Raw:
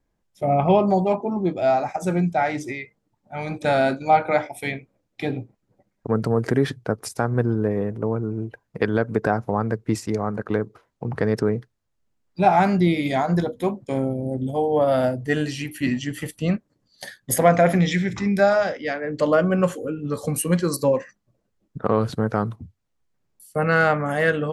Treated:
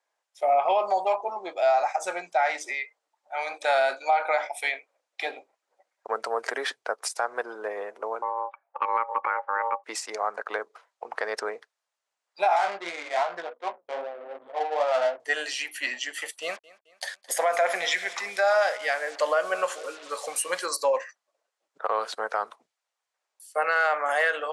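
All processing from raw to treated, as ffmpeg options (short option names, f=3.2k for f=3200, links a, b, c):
-filter_complex "[0:a]asettb=1/sr,asplit=3[a][b][c];[a]atrim=end=8.224[d];[b]atrim=start=8.22:end=9.84,asetpts=PTS-STARTPTS,afade=t=in:d=0.004:c=qsin,afade=t=out:st=1.616:d=0.004:c=qsin,lowpass=1.2k,aeval=exprs='val(0)*sin(2*PI*690*n/s)':c=same[e];[c]atrim=start=9.836[f];[d][e]acrossfade=d=0.004:c1=hsin:c2=qsin[g];[g][f]acrossfade=d=0.004:c1=qsin:c2=hsin,asettb=1/sr,asplit=3[h][i][j];[h]atrim=end=12.564[k];[i]atrim=start=12.56:end=15.2,asetpts=PTS-STARTPTS,afade=t=in:d=0.004:c=qsin,afade=t=out:st=2.636:d=0.004:c=qsin,flanger=delay=16.5:depth=3.9:speed=2.6,adynamicsmooth=sensitivity=3.5:basefreq=500[l];[j]atrim=start=15.196[m];[k][l]acrossfade=d=0.004:c1=hsin:c2=qsin[n];[n][m]acrossfade=d=0.004:c1=qsin:c2=hsin,asettb=1/sr,asplit=3[o][p][q];[o]atrim=end=16.424[r];[p]atrim=start=16.42:end=20.66,asetpts=PTS-STARTPTS,afade=t=in:d=0.004:c=qsin,afade=t=out:st=4.236:d=0.004:c=qsin,acrusher=bits=6:mix=0:aa=0.5,aecho=1:1:216|432|648:0.0794|0.0381|0.0183,atrim=end_sample=186984[s];[q]atrim=start=20.656[t];[r][s]acrossfade=d=0.004:c1=hsin:c2=qsin[u];[u][t]acrossfade=d=0.004:c1=qsin:c2=hsin,highpass=f=630:w=0.5412,highpass=f=630:w=1.3066,alimiter=limit=-17dB:level=0:latency=1:release=72,lowpass=f=10k:w=0.5412,lowpass=f=10k:w=1.3066,volume=3dB"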